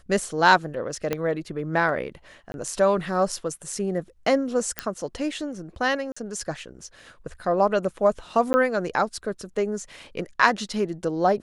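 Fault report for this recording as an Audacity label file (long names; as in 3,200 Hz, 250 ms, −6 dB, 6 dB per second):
1.130000	1.130000	click −11 dBFS
2.520000	2.540000	drop-out 21 ms
4.790000	4.790000	click −8 dBFS
6.120000	6.170000	drop-out 45 ms
8.530000	8.540000	drop-out 10 ms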